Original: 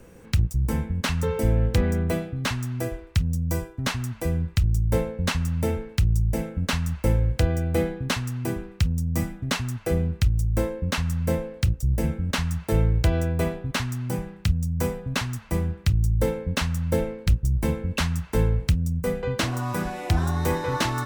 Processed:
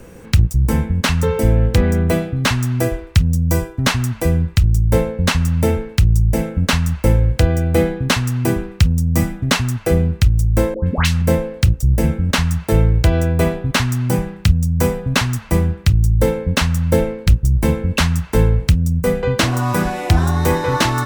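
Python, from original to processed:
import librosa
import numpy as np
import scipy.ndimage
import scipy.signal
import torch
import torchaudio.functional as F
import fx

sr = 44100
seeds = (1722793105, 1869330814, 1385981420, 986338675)

p1 = fx.rider(x, sr, range_db=10, speed_s=0.5)
p2 = x + F.gain(torch.from_numpy(p1), 2.0).numpy()
p3 = fx.dispersion(p2, sr, late='highs', ms=131.0, hz=1200.0, at=(10.74, 11.22))
y = F.gain(torch.from_numpy(p3), 1.5).numpy()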